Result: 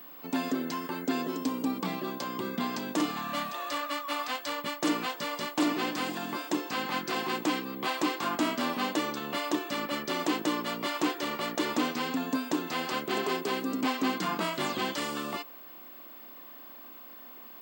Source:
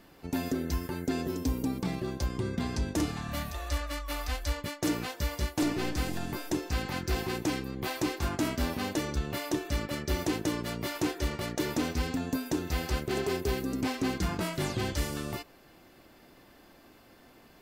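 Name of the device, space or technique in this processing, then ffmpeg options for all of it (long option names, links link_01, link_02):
old television with a line whistle: -af "highpass=frequency=210:width=0.5412,highpass=frequency=210:width=1.3066,equalizer=frequency=390:width_type=q:width=4:gain=-5,equalizer=frequency=1100:width_type=q:width=4:gain=8,equalizer=frequency=3100:width_type=q:width=4:gain=4,equalizer=frequency=5900:width_type=q:width=4:gain=-6,lowpass=frequency=8500:width=0.5412,lowpass=frequency=8500:width=1.3066,aeval=exprs='val(0)+0.00398*sin(2*PI*15734*n/s)':channel_layout=same,volume=2.5dB"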